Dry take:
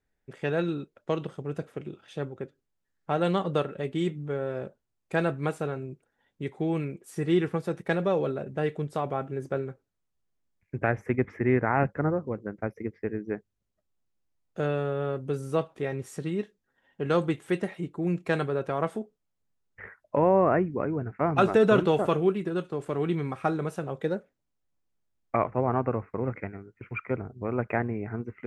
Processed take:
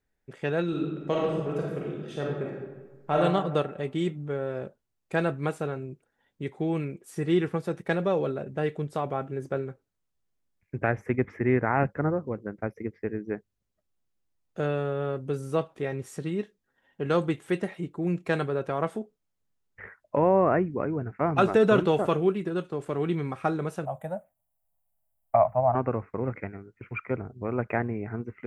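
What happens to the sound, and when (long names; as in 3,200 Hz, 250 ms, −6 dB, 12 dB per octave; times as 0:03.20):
0:00.68–0:03.18: thrown reverb, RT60 1.3 s, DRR −3 dB
0:23.85–0:25.75: drawn EQ curve 120 Hz 0 dB, 210 Hz −6 dB, 300 Hz −16 dB, 430 Hz −23 dB, 640 Hz +11 dB, 1,400 Hz −8 dB, 3,000 Hz −10 dB, 5,100 Hz −27 dB, 7,300 Hz 0 dB, 12,000 Hz +14 dB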